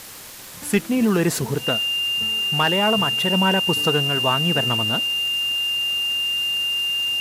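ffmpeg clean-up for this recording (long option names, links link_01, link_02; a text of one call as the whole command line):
ffmpeg -i in.wav -af "adeclick=threshold=4,bandreject=frequency=2800:width=30,afwtdn=0.013" out.wav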